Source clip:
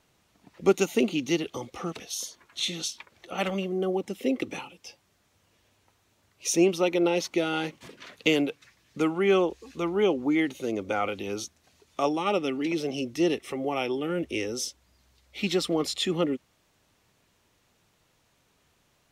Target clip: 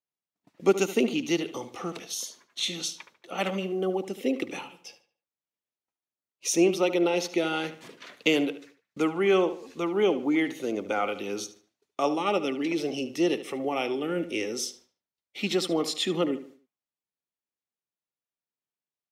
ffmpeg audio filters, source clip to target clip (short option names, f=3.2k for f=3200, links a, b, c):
-filter_complex "[0:a]highpass=170,agate=range=-33dB:threshold=-48dB:ratio=3:detection=peak,asplit=2[a][b];[b]adelay=74,lowpass=f=4.3k:p=1,volume=-12.5dB,asplit=2[c][d];[d]adelay=74,lowpass=f=4.3k:p=1,volume=0.37,asplit=2[e][f];[f]adelay=74,lowpass=f=4.3k:p=1,volume=0.37,asplit=2[g][h];[h]adelay=74,lowpass=f=4.3k:p=1,volume=0.37[i];[a][c][e][g][i]amix=inputs=5:normalize=0"